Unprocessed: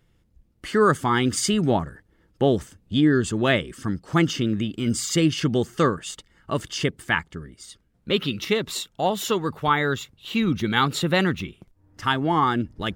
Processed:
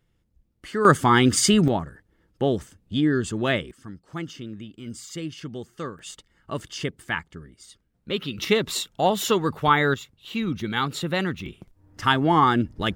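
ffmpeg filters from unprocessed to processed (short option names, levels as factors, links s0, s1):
-af "asetnsamples=n=441:p=0,asendcmd='0.85 volume volume 4dB;1.68 volume volume -3dB;3.71 volume volume -13dB;5.99 volume volume -5dB;8.38 volume volume 2dB;9.94 volume volume -4.5dB;11.46 volume volume 2.5dB',volume=0.501"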